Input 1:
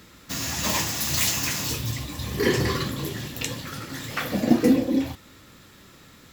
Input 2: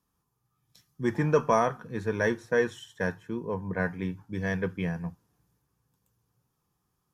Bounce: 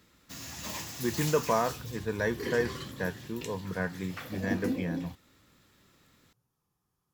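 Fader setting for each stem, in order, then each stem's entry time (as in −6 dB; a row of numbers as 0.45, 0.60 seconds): −13.5, −3.5 decibels; 0.00, 0.00 seconds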